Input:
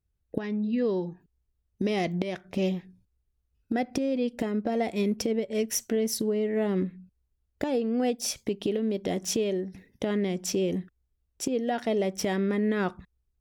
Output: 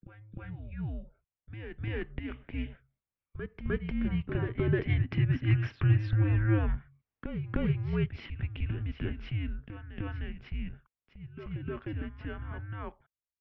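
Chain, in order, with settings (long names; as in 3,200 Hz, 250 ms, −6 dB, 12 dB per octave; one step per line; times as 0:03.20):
source passing by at 0:06.04, 6 m/s, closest 8.7 metres
single-sideband voice off tune −320 Hz 300–3,100 Hz
backwards echo 305 ms −7.5 dB
level +4 dB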